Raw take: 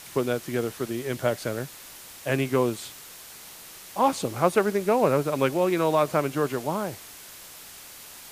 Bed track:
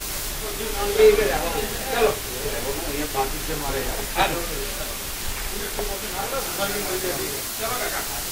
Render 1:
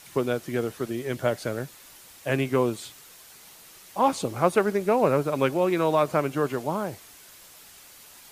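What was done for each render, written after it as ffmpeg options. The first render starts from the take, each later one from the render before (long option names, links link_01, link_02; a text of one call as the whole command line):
ffmpeg -i in.wav -af "afftdn=noise_reduction=6:noise_floor=-45" out.wav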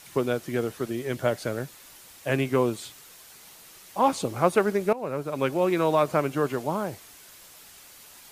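ffmpeg -i in.wav -filter_complex "[0:a]asplit=2[link_01][link_02];[link_01]atrim=end=4.93,asetpts=PTS-STARTPTS,afade=type=out:start_time=4.926:duration=0.004:curve=hsin:silence=0.141254[link_03];[link_02]atrim=start=4.93,asetpts=PTS-STARTPTS,afade=type=in:duration=0.72:silence=0.141254[link_04];[link_03][link_04]concat=n=2:v=0:a=1" out.wav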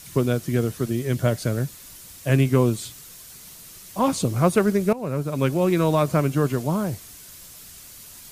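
ffmpeg -i in.wav -af "bass=frequency=250:gain=13,treble=frequency=4000:gain=7,bandreject=frequency=830:width=12" out.wav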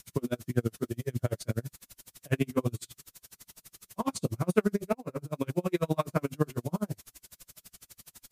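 ffmpeg -i in.wav -af "flanger=delay=16.5:depth=3.5:speed=1.8,aeval=exprs='val(0)*pow(10,-38*(0.5-0.5*cos(2*PI*12*n/s))/20)':channel_layout=same" out.wav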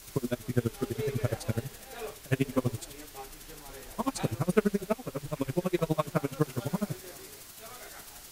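ffmpeg -i in.wav -i bed.wav -filter_complex "[1:a]volume=-20.5dB[link_01];[0:a][link_01]amix=inputs=2:normalize=0" out.wav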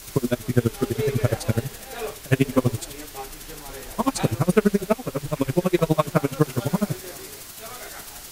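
ffmpeg -i in.wav -af "volume=8.5dB,alimiter=limit=-3dB:level=0:latency=1" out.wav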